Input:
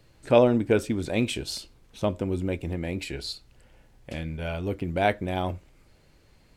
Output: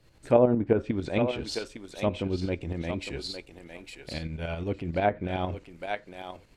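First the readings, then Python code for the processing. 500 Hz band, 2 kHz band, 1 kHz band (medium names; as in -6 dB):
-1.5 dB, -3.0 dB, -1.5 dB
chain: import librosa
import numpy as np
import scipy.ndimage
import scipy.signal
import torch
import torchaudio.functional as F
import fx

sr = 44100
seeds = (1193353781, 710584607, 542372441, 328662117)

y = fx.tremolo_shape(x, sr, shape='saw_up', hz=11.0, depth_pct=60)
y = fx.echo_thinned(y, sr, ms=857, feedback_pct=16, hz=600.0, wet_db=-6.0)
y = fx.env_lowpass_down(y, sr, base_hz=1200.0, full_db=-20.0)
y = y * librosa.db_to_amplitude(1.0)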